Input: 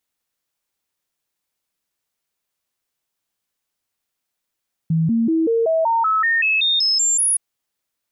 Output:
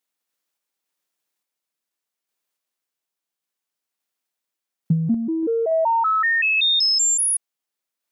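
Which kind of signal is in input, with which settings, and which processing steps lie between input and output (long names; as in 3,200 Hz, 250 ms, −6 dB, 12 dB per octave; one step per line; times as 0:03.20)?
stepped sweep 162 Hz up, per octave 2, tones 13, 0.19 s, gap 0.00 s −14.5 dBFS
high-pass filter 200 Hz 12 dB per octave
transient designer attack +9 dB, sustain −3 dB
sample-and-hold tremolo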